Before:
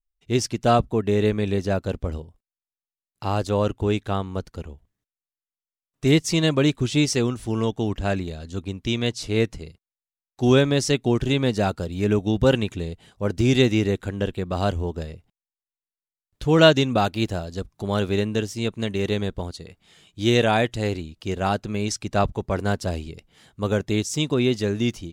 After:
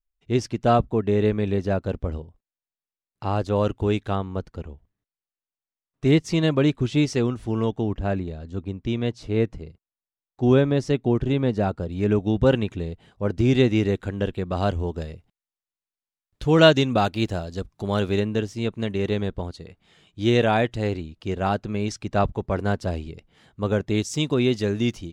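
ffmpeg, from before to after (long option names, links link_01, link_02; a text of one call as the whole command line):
ffmpeg -i in.wav -af "asetnsamples=nb_out_samples=441:pad=0,asendcmd='3.56 lowpass f 4700;4.15 lowpass f 2100;7.81 lowpass f 1100;11.89 lowpass f 2100;13.75 lowpass f 3700;14.79 lowpass f 6400;18.2 lowpass f 2600;23.95 lowpass f 5900',lowpass=frequency=2200:poles=1" out.wav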